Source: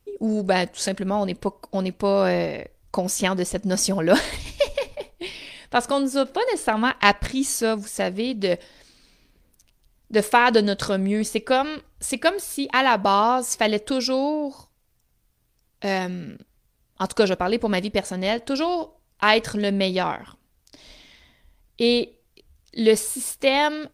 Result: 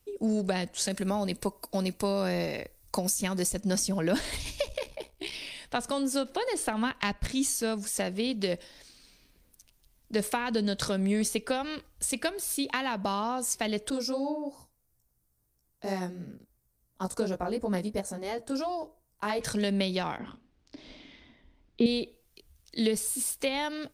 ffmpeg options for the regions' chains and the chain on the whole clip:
-filter_complex "[0:a]asettb=1/sr,asplit=3[a][b][c];[a]atrim=end=0.904[d];[b]atrim=start=0.9:end=3.61,asetpts=PTS-STARTPTS,afade=t=in:d=0.004:c=qsin,afade=t=out:st=2.706:d=0.004:c=qsin,highshelf=f=6.2k:g=11,bandreject=f=3.2k:w=8.9[e];[c]atrim=start=3.606[f];[d][e]acrossfade=d=0.004:c1=hsin:c2=qsin[g];[g][f]acrossfade=d=0.004:c1=qsin:c2=hsin,asettb=1/sr,asplit=3[h][i][j];[h]atrim=end=4.654[k];[i]atrim=start=4.65:end=5.33,asetpts=PTS-STARTPTS,afade=t=in:d=0.004:c=qsin,afade=t=out:st=0.676:d=0.004:c=qsin,aeval=exprs='val(0)*sin(2*PI*33*n/s)':c=same,asoftclip=type=hard:threshold=-15.5dB[l];[j]atrim=start=5.326[m];[k][l]acrossfade=d=0.004:c1=hsin:c2=qsin[n];[n][m]acrossfade=d=0.004:c1=qsin:c2=hsin,asettb=1/sr,asplit=3[o][p][q];[o]atrim=end=13.904[r];[p]atrim=start=13.9:end=19.41,asetpts=PTS-STARTPTS,afade=t=in:d=0.004:c=qsin,afade=t=out:st=5.506:d=0.004:c=qsin,equalizer=f=3k:t=o:w=1.5:g=-14,flanger=delay=15:depth=4.1:speed=2.9[s];[q]atrim=start=19.406[t];[r][s]acrossfade=d=0.004:c1=hsin:c2=qsin[u];[u][t]acrossfade=d=0.004:c1=qsin:c2=hsin,asettb=1/sr,asplit=3[v][w][x];[v]atrim=end=20.184[y];[w]atrim=start=20.18:end=21.86,asetpts=PTS-STARTPTS,afade=t=in:d=0.004:c=qsin,afade=t=out:st=1.676:d=0.004:c=qsin,lowpass=3.2k,equalizer=f=280:w=1.1:g=11,asplit=2[z][aa];[aa]adelay=39,volume=-10dB[ab];[z][ab]amix=inputs=2:normalize=0,atrim=end_sample=74088[ac];[x]atrim=start=21.856[ad];[y][ac]acrossfade=d=0.004:c1=hsin:c2=qsin[ae];[ae][ad]acrossfade=d=0.004:c1=qsin:c2=hsin,highshelf=f=3.5k:g=7,acrossover=split=240[af][ag];[ag]acompressor=threshold=-23dB:ratio=10[ah];[af][ah]amix=inputs=2:normalize=0,volume=-4dB"

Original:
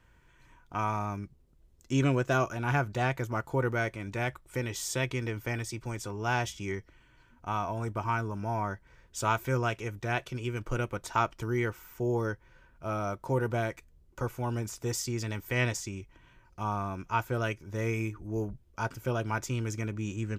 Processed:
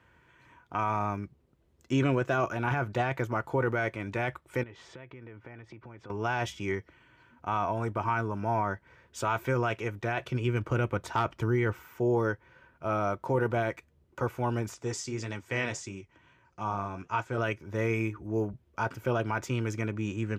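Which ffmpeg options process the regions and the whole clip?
-filter_complex "[0:a]asettb=1/sr,asplit=3[a][b][c];[a]atrim=end=4.634[d];[b]atrim=start=4.63:end=6.1,asetpts=PTS-STARTPTS,afade=t=in:d=0.004:c=qsin,afade=t=out:st=1.466:d=0.004:c=qsin,lowpass=2.2k,acompressor=threshold=-46dB:ratio=10:attack=3.2:release=140:knee=1:detection=peak[e];[c]atrim=start=6.096[f];[d][e]acrossfade=d=0.004:c1=hsin:c2=qsin[g];[g][f]acrossfade=d=0.004:c1=qsin:c2=hsin,asettb=1/sr,asplit=3[h][i][j];[h]atrim=end=10.204[k];[i]atrim=start=10.2:end=11.82,asetpts=PTS-STARTPTS,afade=t=in:d=0.004:c=qsin,afade=t=out:st=1.616:d=0.004:c=qsin,aeval=exprs='0.133*(abs(mod(val(0)/0.133+3,4)-2)-1)':c=same,lowshelf=f=180:g=8[l];[j]atrim=start=11.816[m];[k][l]acrossfade=d=0.004:c1=hsin:c2=qsin[n];[n][m]acrossfade=d=0.004:c1=qsin:c2=hsin,asettb=1/sr,asplit=3[o][p][q];[o]atrim=end=14.744[r];[p]atrim=start=14.74:end=17.38,asetpts=PTS-STARTPTS,afade=t=in:d=0.004:c=qsin,afade=t=out:st=2.636:d=0.004:c=qsin,lowpass=f=7.5k:t=q:w=1.9,flanger=delay=5.7:depth=6.9:regen=-59:speed=1.6:shape=sinusoidal[s];[q]atrim=start=17.376[t];[r][s]acrossfade=d=0.004:c1=hsin:c2=qsin[u];[u][t]acrossfade=d=0.004:c1=qsin:c2=hsin,highpass=f=66:w=0.5412,highpass=f=66:w=1.3066,bass=f=250:g=-4,treble=f=4k:g=-10,alimiter=limit=-22dB:level=0:latency=1:release=10,volume=4.5dB"

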